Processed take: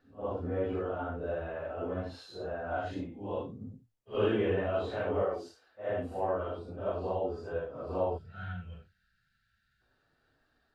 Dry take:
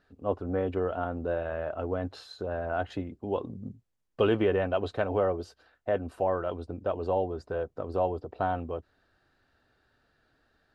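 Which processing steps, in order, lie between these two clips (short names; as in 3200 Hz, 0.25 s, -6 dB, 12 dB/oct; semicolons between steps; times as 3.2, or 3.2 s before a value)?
phase scrambler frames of 0.2 s; 5.22–5.9 tone controls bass -8 dB, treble +1 dB; 8.18–9.82 spectral gain 220–1300 Hz -22 dB; gain -3.5 dB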